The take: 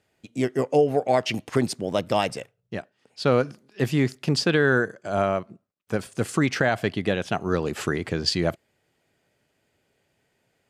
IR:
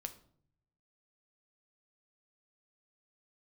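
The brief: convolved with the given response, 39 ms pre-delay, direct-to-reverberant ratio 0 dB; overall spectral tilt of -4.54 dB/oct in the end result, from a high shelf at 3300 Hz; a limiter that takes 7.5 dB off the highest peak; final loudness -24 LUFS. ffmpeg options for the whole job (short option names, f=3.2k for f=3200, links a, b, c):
-filter_complex "[0:a]highshelf=f=3.3k:g=8,alimiter=limit=-11.5dB:level=0:latency=1,asplit=2[a][b];[1:a]atrim=start_sample=2205,adelay=39[c];[b][c]afir=irnorm=-1:irlink=0,volume=3dB[d];[a][d]amix=inputs=2:normalize=0,volume=-2dB"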